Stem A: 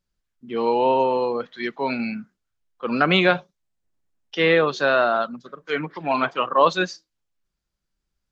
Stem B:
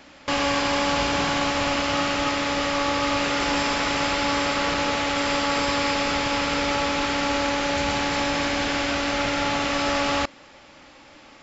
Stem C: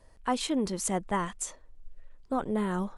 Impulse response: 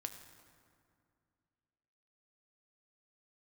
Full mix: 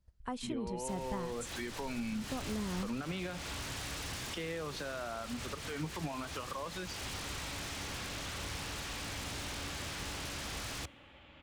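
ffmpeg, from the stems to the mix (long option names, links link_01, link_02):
-filter_complex "[0:a]acompressor=threshold=-28dB:ratio=6,alimiter=level_in=2.5dB:limit=-24dB:level=0:latency=1:release=93,volume=-2.5dB,volume=-4.5dB,asplit=2[link_01][link_02];[1:a]highshelf=frequency=4200:width_type=q:width=3:gain=-9.5,aeval=exprs='0.0531*(abs(mod(val(0)/0.0531+3,4)-2)-1)':channel_layout=same,adelay=600,volume=-13dB,asplit=2[link_03][link_04];[link_04]volume=-17.5dB[link_05];[2:a]agate=range=-22dB:threshold=-52dB:ratio=16:detection=peak,volume=-9.5dB[link_06];[link_02]apad=whole_len=530467[link_07];[link_03][link_07]sidechaincompress=threshold=-44dB:ratio=8:attack=6.8:release=201[link_08];[3:a]atrim=start_sample=2205[link_09];[link_05][link_09]afir=irnorm=-1:irlink=0[link_10];[link_01][link_08][link_06][link_10]amix=inputs=4:normalize=0,equalizer=frequency=66:width=0.53:gain=15,acrossover=split=130[link_11][link_12];[link_12]acompressor=threshold=-35dB:ratio=6[link_13];[link_11][link_13]amix=inputs=2:normalize=0"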